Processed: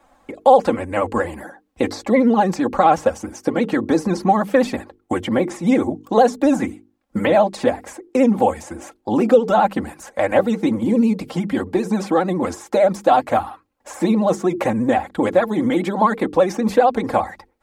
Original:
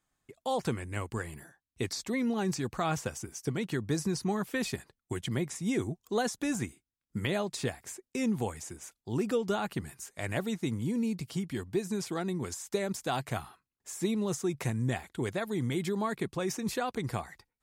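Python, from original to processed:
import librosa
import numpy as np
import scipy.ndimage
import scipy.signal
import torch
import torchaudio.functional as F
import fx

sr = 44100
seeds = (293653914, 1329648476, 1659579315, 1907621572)

y = fx.high_shelf(x, sr, hz=3700.0, db=-11.0)
y = fx.hum_notches(y, sr, base_hz=50, count=9)
y = y + 0.86 * np.pad(y, (int(3.7 * sr / 1000.0), 0))[:len(y)]
y = fx.vibrato(y, sr, rate_hz=15.0, depth_cents=87.0)
y = fx.peak_eq(y, sr, hz=660.0, db=12.5, octaves=1.5)
y = fx.band_squash(y, sr, depth_pct=40)
y = F.gain(torch.from_numpy(y), 8.0).numpy()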